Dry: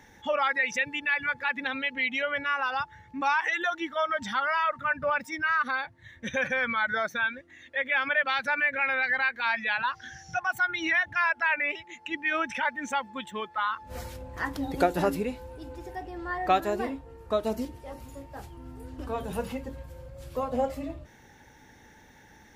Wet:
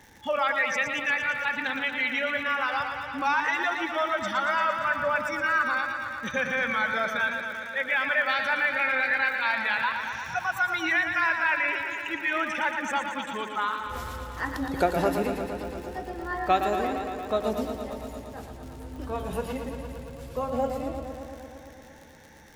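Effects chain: crackle 78 per s -38 dBFS; modulated delay 115 ms, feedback 79%, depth 53 cents, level -7.5 dB

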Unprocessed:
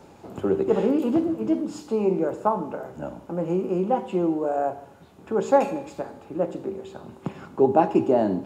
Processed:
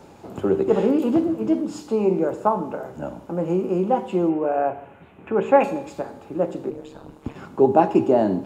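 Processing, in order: 4.29–5.64 s: resonant high shelf 3.5 kHz -11.5 dB, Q 3; 6.70–7.36 s: ring modulator 72 Hz; trim +2.5 dB

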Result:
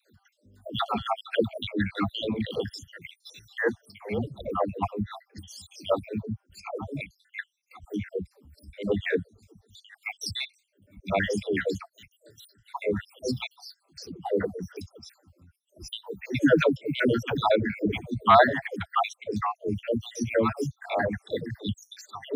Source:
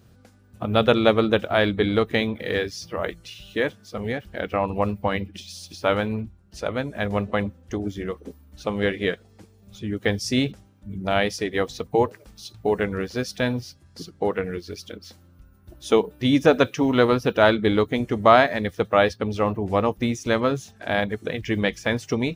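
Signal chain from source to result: random holes in the spectrogram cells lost 73%; phase dispersion lows, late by 143 ms, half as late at 420 Hz

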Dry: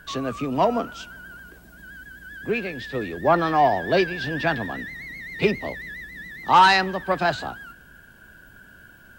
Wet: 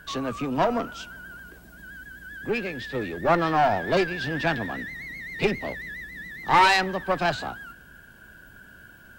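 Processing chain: single-diode clipper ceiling -21.5 dBFS

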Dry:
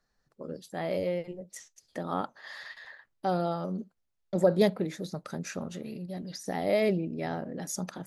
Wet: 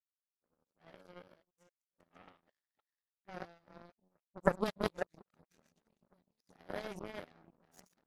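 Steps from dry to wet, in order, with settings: chunks repeated in reverse 278 ms, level -1.5 dB; phase dispersion highs, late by 45 ms, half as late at 470 Hz; power-law waveshaper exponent 3; trim +1.5 dB

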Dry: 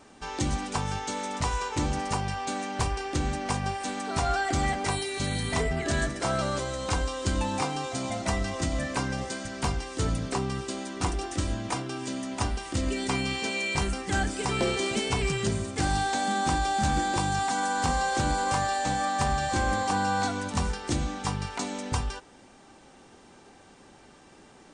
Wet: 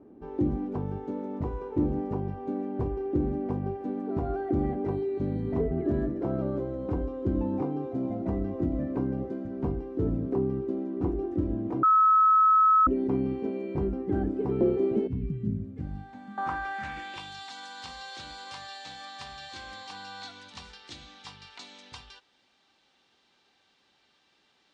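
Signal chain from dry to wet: RIAA curve playback; band-pass sweep 350 Hz -> 3.9 kHz, 15.49–17.38 s; 11.83–12.87 s: bleep 1.29 kHz -19.5 dBFS; 15.07–16.38 s: FFT filter 240 Hz 0 dB, 360 Hz -17 dB, 800 Hz -24 dB, 2.1 kHz -8 dB; trim +3 dB

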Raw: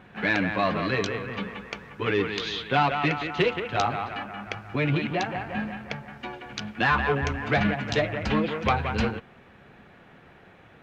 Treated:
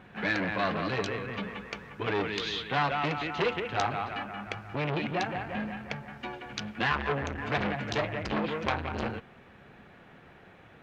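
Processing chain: transformer saturation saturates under 1.3 kHz; trim -1.5 dB

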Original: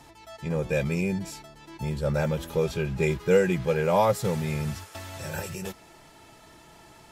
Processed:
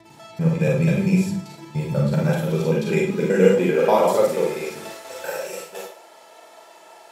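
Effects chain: slices played last to first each 97 ms, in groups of 2; Schroeder reverb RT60 0.4 s, combs from 33 ms, DRR -1.5 dB; high-pass sweep 140 Hz -> 570 Hz, 1.92–5.75 s

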